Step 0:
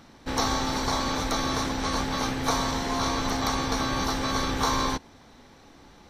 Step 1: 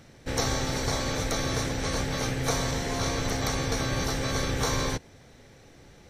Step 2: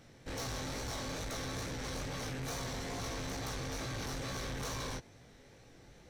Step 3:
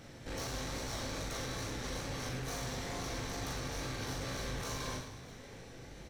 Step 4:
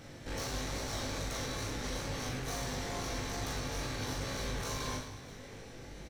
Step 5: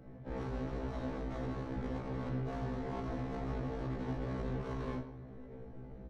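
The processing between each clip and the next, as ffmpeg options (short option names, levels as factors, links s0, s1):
-af "equalizer=f=125:t=o:w=1:g=7,equalizer=f=250:t=o:w=1:g=-6,equalizer=f=500:t=o:w=1:g=5,equalizer=f=1000:t=o:w=1:g=-10,equalizer=f=2000:t=o:w=1:g=3,equalizer=f=4000:t=o:w=1:g=-4,equalizer=f=8000:t=o:w=1:g=4"
-af "flanger=delay=16:depth=7.6:speed=2.3,asoftclip=type=tanh:threshold=0.02,volume=0.75"
-filter_complex "[0:a]acompressor=threshold=0.00251:ratio=2,asplit=2[s0][s1];[s1]aecho=0:1:40|104|206.4|370.2|632.4:0.631|0.398|0.251|0.158|0.1[s2];[s0][s2]amix=inputs=2:normalize=0,volume=1.88"
-filter_complex "[0:a]asplit=2[s0][s1];[s1]adelay=20,volume=0.299[s2];[s0][s2]amix=inputs=2:normalize=0,volume=1.19"
-filter_complex "[0:a]acrossover=split=140[s0][s1];[s1]adynamicsmooth=sensitivity=3:basefreq=610[s2];[s0][s2]amix=inputs=2:normalize=0,afftfilt=real='re*1.73*eq(mod(b,3),0)':imag='im*1.73*eq(mod(b,3),0)':win_size=2048:overlap=0.75,volume=1.41"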